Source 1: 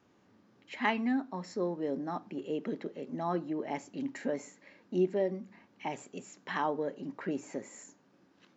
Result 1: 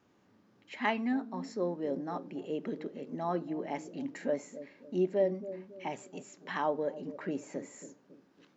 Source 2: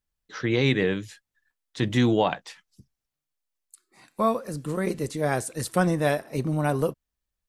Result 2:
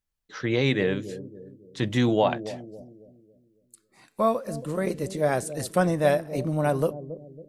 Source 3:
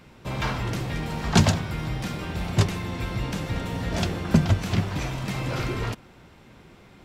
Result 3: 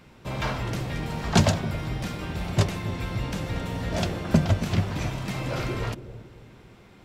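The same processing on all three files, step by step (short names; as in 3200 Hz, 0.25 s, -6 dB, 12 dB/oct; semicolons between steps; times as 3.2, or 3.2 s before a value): dynamic EQ 600 Hz, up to +6 dB, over -41 dBFS, Q 3.4; on a send: analogue delay 0.276 s, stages 1024, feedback 43%, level -12 dB; on the sum: gain -1.5 dB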